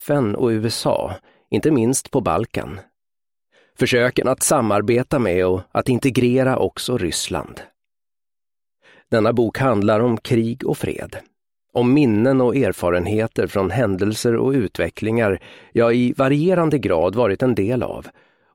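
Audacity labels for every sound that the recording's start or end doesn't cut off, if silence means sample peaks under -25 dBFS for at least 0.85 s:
3.800000	7.580000	sound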